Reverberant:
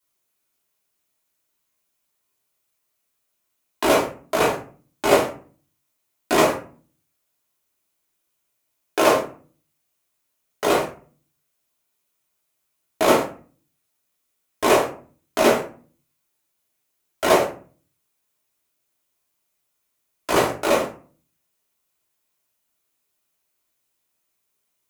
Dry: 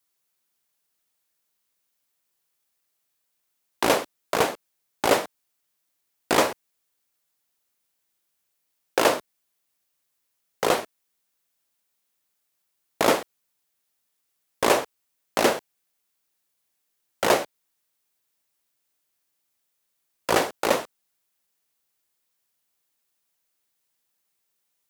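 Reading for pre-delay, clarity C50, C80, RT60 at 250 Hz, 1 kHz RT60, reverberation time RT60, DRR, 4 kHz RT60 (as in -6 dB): 3 ms, 8.0 dB, 13.5 dB, 0.60 s, 0.40 s, 0.40 s, -5.5 dB, 0.25 s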